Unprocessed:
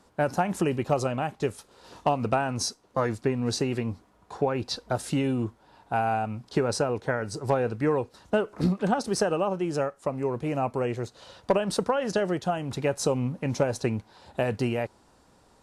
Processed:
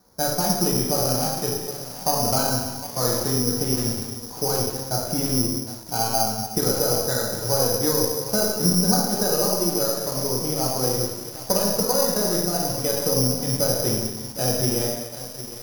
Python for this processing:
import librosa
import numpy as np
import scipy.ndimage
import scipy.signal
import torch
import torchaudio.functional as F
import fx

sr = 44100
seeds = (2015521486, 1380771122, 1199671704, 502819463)

y = np.where(x < 0.0, 10.0 ** (-3.0 / 20.0) * x, x)
y = fx.rev_gated(y, sr, seeds[0], gate_ms=430, shape='falling', drr_db=-4.5)
y = (np.kron(scipy.signal.resample_poly(y, 1, 8), np.eye(8)[0]) * 8)[:len(y)]
y = fx.high_shelf(y, sr, hz=2400.0, db=-12.0)
y = fx.echo_crushed(y, sr, ms=759, feedback_pct=55, bits=5, wet_db=-12.5)
y = F.gain(torch.from_numpy(y), -1.5).numpy()